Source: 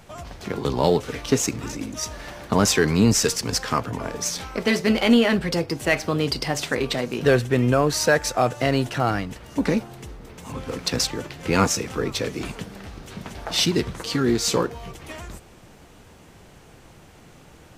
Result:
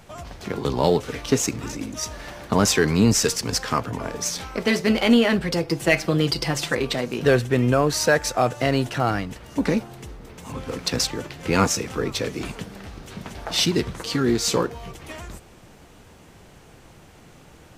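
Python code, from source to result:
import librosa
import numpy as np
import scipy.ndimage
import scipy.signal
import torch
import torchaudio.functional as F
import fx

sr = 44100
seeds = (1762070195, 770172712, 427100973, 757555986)

y = fx.comb(x, sr, ms=5.9, depth=0.65, at=(5.65, 6.75))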